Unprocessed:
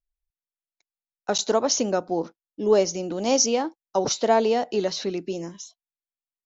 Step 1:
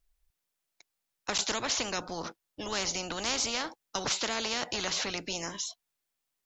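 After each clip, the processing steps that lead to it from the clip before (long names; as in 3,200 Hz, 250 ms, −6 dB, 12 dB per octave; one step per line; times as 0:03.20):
every bin compressed towards the loudest bin 4 to 1
level −8.5 dB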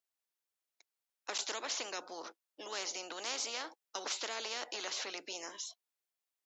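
high-pass filter 320 Hz 24 dB per octave
level −7.5 dB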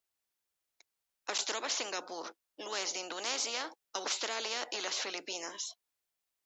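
low-shelf EQ 100 Hz +7.5 dB
level +3.5 dB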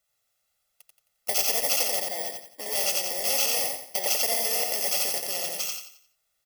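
samples in bit-reversed order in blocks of 32 samples
comb filter 1.5 ms, depth 76%
on a send: repeating echo 88 ms, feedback 36%, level −3 dB
on the sum: level +7 dB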